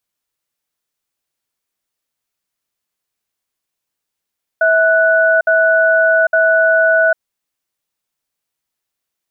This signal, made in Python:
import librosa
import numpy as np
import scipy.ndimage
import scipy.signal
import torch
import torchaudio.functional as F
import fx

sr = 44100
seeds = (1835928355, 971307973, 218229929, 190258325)

y = fx.cadence(sr, length_s=2.54, low_hz=650.0, high_hz=1480.0, on_s=0.8, off_s=0.06, level_db=-11.5)